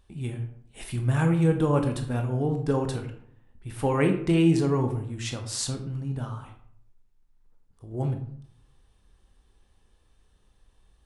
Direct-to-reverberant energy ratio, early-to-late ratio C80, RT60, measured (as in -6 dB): 4.5 dB, 12.0 dB, 0.60 s